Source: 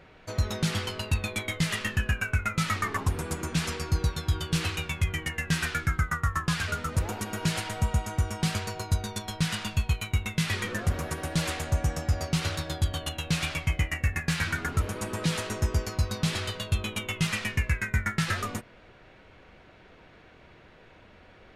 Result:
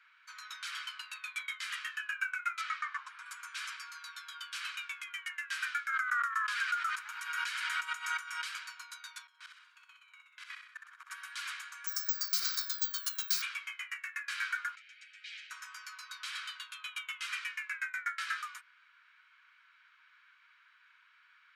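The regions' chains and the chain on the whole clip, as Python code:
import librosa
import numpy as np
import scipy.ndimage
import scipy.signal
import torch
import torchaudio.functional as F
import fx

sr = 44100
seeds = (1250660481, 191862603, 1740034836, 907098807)

y = fx.chain(x, sr, fx.lowpass(hz=7200.0, slope=12),
    fx.high_shelf(hz=5700.0, db=-8.0), at=(2.61, 3.26))
y = fx.chain(y, sr, fx.peak_eq(hz=1700.0, db=3.0, octaves=1.2),
    fx.pre_swell(db_per_s=40.0), at=(5.89, 8.44))
y = fx.chain(y, sr, fx.tilt_eq(slope=-3.0),
    fx.level_steps(step_db=23),
    fx.room_flutter(wall_m=10.9, rt60_s=0.64), at=(9.27, 11.1))
y = fx.chain(y, sr, fx.resample_bad(factor=2, down='none', up='zero_stuff'),
    fx.high_shelf_res(hz=3800.0, db=8.5, q=3.0),
    fx.band_squash(depth_pct=40), at=(11.87, 13.42))
y = fx.chain(y, sr, fx.ellip_bandstop(low_hz=170.0, high_hz=2100.0, order=3, stop_db=50),
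    fx.air_absorb(metres=160.0), at=(14.75, 15.51))
y = scipy.signal.sosfilt(scipy.signal.butter(12, 1100.0, 'highpass', fs=sr, output='sos'), y)
y = fx.tilt_eq(y, sr, slope=-3.0)
y = y + 0.36 * np.pad(y, (int(1.3 * sr / 1000.0), 0))[:len(y)]
y = F.gain(torch.from_numpy(y), -3.0).numpy()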